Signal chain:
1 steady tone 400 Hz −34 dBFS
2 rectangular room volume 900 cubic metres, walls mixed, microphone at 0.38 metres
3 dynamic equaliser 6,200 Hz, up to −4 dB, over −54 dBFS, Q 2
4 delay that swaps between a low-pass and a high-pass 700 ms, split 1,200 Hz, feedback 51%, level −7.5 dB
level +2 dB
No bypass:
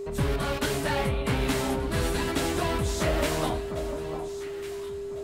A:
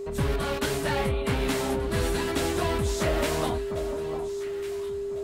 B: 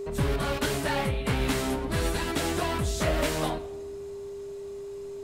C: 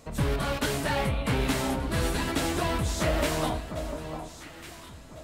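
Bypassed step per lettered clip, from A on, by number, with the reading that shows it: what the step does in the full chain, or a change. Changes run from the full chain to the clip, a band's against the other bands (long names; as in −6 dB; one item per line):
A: 2, change in momentary loudness spread −3 LU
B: 4, change in momentary loudness spread +3 LU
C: 1, 500 Hz band −3.0 dB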